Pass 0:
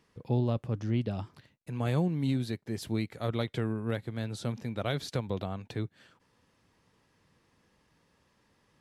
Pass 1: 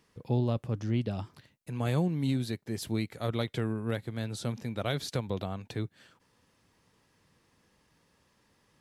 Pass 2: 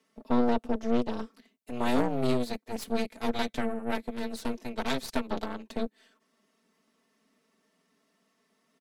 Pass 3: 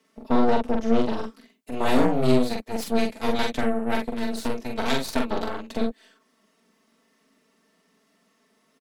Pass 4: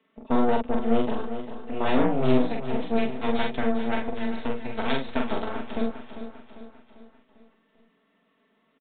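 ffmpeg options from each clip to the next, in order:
-af "highshelf=f=5.4k:g=5.5"
-af "afreqshift=120,aecho=1:1:4.5:0.97,aeval=exprs='0.2*(cos(1*acos(clip(val(0)/0.2,-1,1)))-cos(1*PI/2))+0.0355*(cos(3*acos(clip(val(0)/0.2,-1,1)))-cos(3*PI/2))+0.0398*(cos(4*acos(clip(val(0)/0.2,-1,1)))-cos(4*PI/2))+0.00891*(cos(8*acos(clip(val(0)/0.2,-1,1)))-cos(8*PI/2))':c=same"
-filter_complex "[0:a]asplit=2[a][b];[b]adelay=44,volume=-3dB[c];[a][c]amix=inputs=2:normalize=0,volume=4.5dB"
-filter_complex "[0:a]asplit=2[a][b];[b]aecho=0:1:397|794|1191|1588|1985:0.282|0.138|0.0677|0.0332|0.0162[c];[a][c]amix=inputs=2:normalize=0,aresample=8000,aresample=44100,volume=-2dB"

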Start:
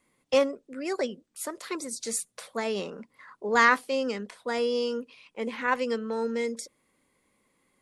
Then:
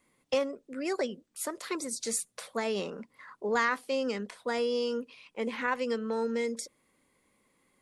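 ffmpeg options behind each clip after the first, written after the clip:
-af "acompressor=threshold=-27dB:ratio=2.5"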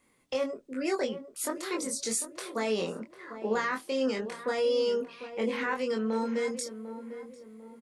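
-filter_complex "[0:a]alimiter=limit=-23dB:level=0:latency=1:release=26,asplit=2[a][b];[b]adelay=23,volume=-3.5dB[c];[a][c]amix=inputs=2:normalize=0,asplit=2[d][e];[e]adelay=748,lowpass=f=1.2k:p=1,volume=-11dB,asplit=2[f][g];[g]adelay=748,lowpass=f=1.2k:p=1,volume=0.43,asplit=2[h][i];[i]adelay=748,lowpass=f=1.2k:p=1,volume=0.43,asplit=2[j][k];[k]adelay=748,lowpass=f=1.2k:p=1,volume=0.43[l];[d][f][h][j][l]amix=inputs=5:normalize=0,volume=1dB"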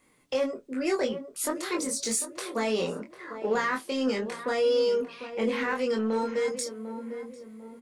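-filter_complex "[0:a]flanger=delay=6.4:depth=2.1:regen=-61:speed=0.62:shape=sinusoidal,asplit=2[a][b];[b]asoftclip=type=hard:threshold=-38dB,volume=-10dB[c];[a][c]amix=inputs=2:normalize=0,volume=5.5dB"

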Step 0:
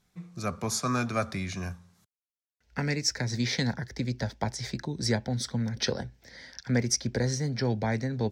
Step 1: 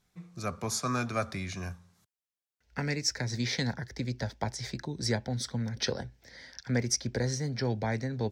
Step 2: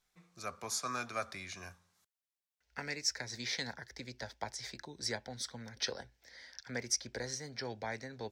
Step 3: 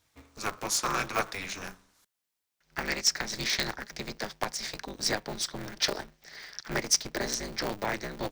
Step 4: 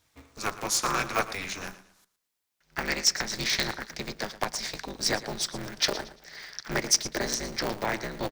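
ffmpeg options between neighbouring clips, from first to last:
-af "equalizer=f=200:t=o:w=0.77:g=-2.5,volume=-2dB"
-af "equalizer=f=130:w=0.42:g=-14.5,volume=-3.5dB"
-af "aeval=exprs='val(0)*sgn(sin(2*PI*100*n/s))':c=same,volume=8.5dB"
-af "aecho=1:1:114|228|342:0.168|0.0487|0.0141,volume=2dB"

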